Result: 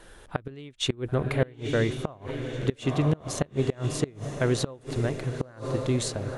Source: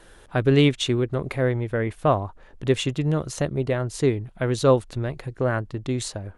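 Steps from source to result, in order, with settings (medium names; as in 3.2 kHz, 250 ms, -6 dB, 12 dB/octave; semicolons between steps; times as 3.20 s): echo that smears into a reverb 993 ms, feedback 50%, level -11 dB; inverted gate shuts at -12 dBFS, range -26 dB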